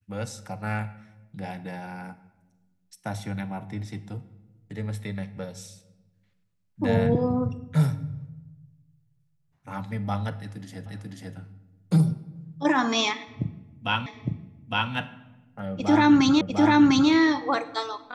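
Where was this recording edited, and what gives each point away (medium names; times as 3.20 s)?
10.86 s: repeat of the last 0.49 s
14.06 s: repeat of the last 0.86 s
16.41 s: repeat of the last 0.7 s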